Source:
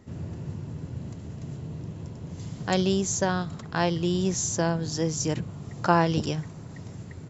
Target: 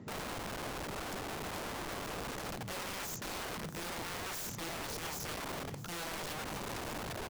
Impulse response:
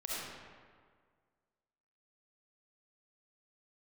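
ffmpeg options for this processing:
-filter_complex "[0:a]highpass=frequency=130:width=0.5412,highpass=frequency=130:width=1.3066,aemphasis=mode=reproduction:type=bsi,areverse,acompressor=threshold=-30dB:ratio=16,areverse,aeval=exprs='(mod(70.8*val(0)+1,2)-1)/70.8':channel_layout=same,asplit=2[link_01][link_02];[link_02]aecho=0:1:650:0.158[link_03];[link_01][link_03]amix=inputs=2:normalize=0,volume=1dB"

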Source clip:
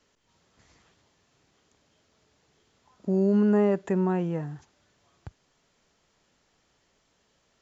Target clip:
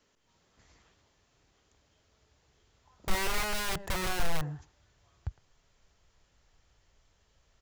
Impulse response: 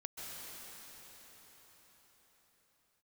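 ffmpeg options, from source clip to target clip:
-filter_complex "[0:a]asettb=1/sr,asplit=3[link_01][link_02][link_03];[link_01]atrim=end=3.274[link_04];[link_02]atrim=start=3.27:end=3.86,asetpts=PTS-STARTPTS,afade=type=in:duration=0.004:curve=qsin,afade=type=out:start_time=0.586:duration=0.004:curve=qsin,aecho=1:1:1.1:0.58,atrim=end_sample=26019[link_05];[link_03]atrim=start=3.856[link_06];[link_04][link_05]acrossfade=duration=0.004:curve1=hsin:curve2=qsin[link_07];[link_07][link_06]acrossfade=duration=0.004:curve1=qsin:curve2=hsin,asplit=2[link_08][link_09];[link_09]adelay=110,highpass=300,lowpass=3400,asoftclip=type=hard:threshold=-24dB,volume=-15dB[link_10];[link_08][link_10]amix=inputs=2:normalize=0,aeval=exprs='(mod(18.8*val(0)+1,2)-1)/18.8':channel_layout=same,asubboost=boost=8.5:cutoff=77,volume=-2.5dB"

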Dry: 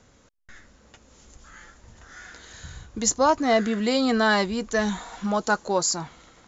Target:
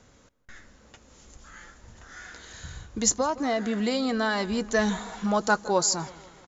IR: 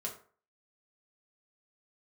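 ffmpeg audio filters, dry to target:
-filter_complex "[0:a]asettb=1/sr,asplit=3[link_01][link_02][link_03];[link_01]atrim=end=3.134[link_04];[link_02]atrim=start=3.13:end=4.49,asetpts=PTS-STARTPTS,afade=type=in:duration=0.004:curve=qsin,afade=type=out:start_time=1.356:duration=0.004:curve=qsin,acompressor=threshold=-23dB:ratio=6[link_05];[link_03]atrim=start=4.486[link_06];[link_04][link_05]acrossfade=duration=0.004:curve1=hsin:curve2=qsin[link_07];[link_07][link_06]acrossfade=duration=0.004:curve1=qsin:curve2=hsin,asplit=2[link_08][link_09];[link_09]adelay=163,lowpass=frequency=2900:poles=1,volume=-18.5dB,asplit=2[link_10][link_11];[link_11]adelay=163,lowpass=frequency=2900:poles=1,volume=0.54,asplit=2[link_12][link_13];[link_13]adelay=163,lowpass=frequency=2900:poles=1,volume=0.54,asplit=2[link_14][link_15];[link_15]adelay=163,lowpass=frequency=2900:poles=1,volume=0.54,asplit=2[link_16][link_17];[link_17]adelay=163,lowpass=frequency=2900:poles=1,volume=0.54[link_18];[link_08][link_10][link_12][link_14][link_16][link_18]amix=inputs=6:normalize=0"

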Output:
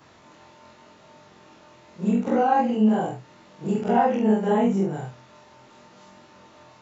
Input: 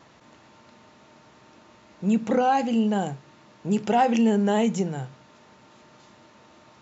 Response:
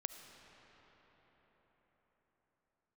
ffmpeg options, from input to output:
-filter_complex "[0:a]afftfilt=real='re':imag='-im':win_size=4096:overlap=0.75,acrossover=split=1900[link_01][link_02];[link_02]acompressor=threshold=-54dB:ratio=20[link_03];[link_01][link_03]amix=inputs=2:normalize=0,flanger=delay=20:depth=3.6:speed=0.81,volume=9dB"

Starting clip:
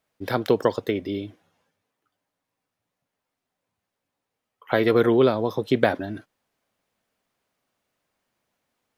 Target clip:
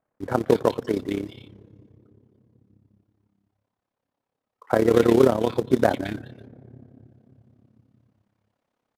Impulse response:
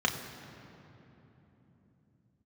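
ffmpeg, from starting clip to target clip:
-filter_complex "[0:a]aemphasis=mode=reproduction:type=75fm,acrossover=split=2000[link_01][link_02];[link_02]adelay=220[link_03];[link_01][link_03]amix=inputs=2:normalize=0,asplit=2[link_04][link_05];[link_05]acrusher=bits=2:mode=log:mix=0:aa=0.000001,volume=-6dB[link_06];[link_04][link_06]amix=inputs=2:normalize=0,aresample=32000,aresample=44100,asplit=2[link_07][link_08];[1:a]atrim=start_sample=2205,lowshelf=frequency=120:gain=12[link_09];[link_08][link_09]afir=irnorm=-1:irlink=0,volume=-30dB[link_10];[link_07][link_10]amix=inputs=2:normalize=0,tremolo=f=34:d=0.788"

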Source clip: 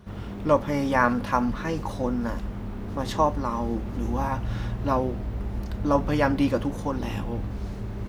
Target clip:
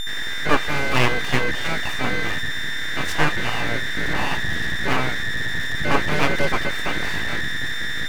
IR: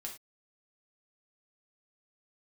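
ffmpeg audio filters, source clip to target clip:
-af "aeval=exprs='val(0)+0.0447*sin(2*PI*1800*n/s)':channel_layout=same,aeval=exprs='abs(val(0))':channel_layout=same,volume=5dB"

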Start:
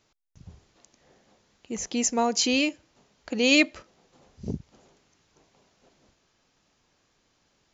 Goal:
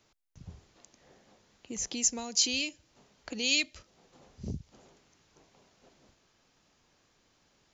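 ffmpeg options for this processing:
ffmpeg -i in.wav -filter_complex "[0:a]acrossover=split=130|3000[link_01][link_02][link_03];[link_02]acompressor=threshold=-40dB:ratio=5[link_04];[link_01][link_04][link_03]amix=inputs=3:normalize=0" out.wav

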